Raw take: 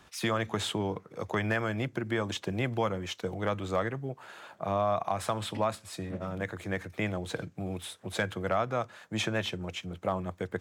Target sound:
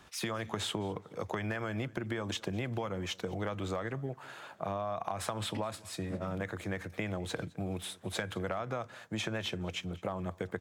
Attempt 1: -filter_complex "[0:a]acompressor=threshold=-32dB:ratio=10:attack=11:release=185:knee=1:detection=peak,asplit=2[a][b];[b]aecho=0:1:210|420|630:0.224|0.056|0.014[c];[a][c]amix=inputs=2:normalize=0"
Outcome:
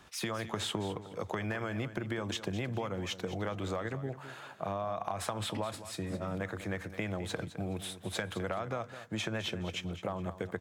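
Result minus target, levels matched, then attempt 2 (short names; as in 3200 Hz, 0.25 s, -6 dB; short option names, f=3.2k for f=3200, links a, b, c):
echo-to-direct +10.5 dB
-filter_complex "[0:a]acompressor=threshold=-32dB:ratio=10:attack=11:release=185:knee=1:detection=peak,asplit=2[a][b];[b]aecho=0:1:210|420:0.0668|0.0167[c];[a][c]amix=inputs=2:normalize=0"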